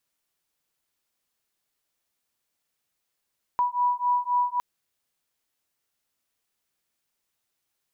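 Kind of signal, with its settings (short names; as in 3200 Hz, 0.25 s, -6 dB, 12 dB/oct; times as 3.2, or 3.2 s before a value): beating tones 978 Hz, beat 3.8 Hz, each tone -24.5 dBFS 1.01 s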